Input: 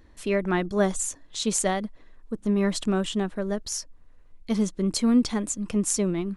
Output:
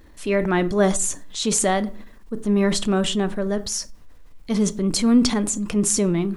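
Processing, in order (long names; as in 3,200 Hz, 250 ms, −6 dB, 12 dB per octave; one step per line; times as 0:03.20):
rectangular room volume 390 cubic metres, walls furnished, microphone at 0.34 metres
bit-depth reduction 12 bits, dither none
transient designer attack −3 dB, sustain +5 dB
level +5 dB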